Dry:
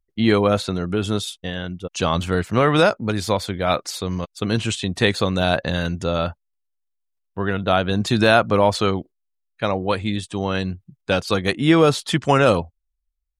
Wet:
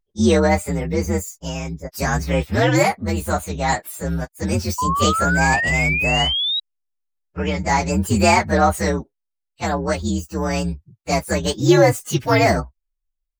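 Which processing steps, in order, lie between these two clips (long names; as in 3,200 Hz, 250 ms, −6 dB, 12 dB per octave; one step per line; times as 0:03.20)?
partials spread apart or drawn together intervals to 125%
sound drawn into the spectrogram rise, 0:04.78–0:06.60, 980–3,900 Hz −24 dBFS
level +3 dB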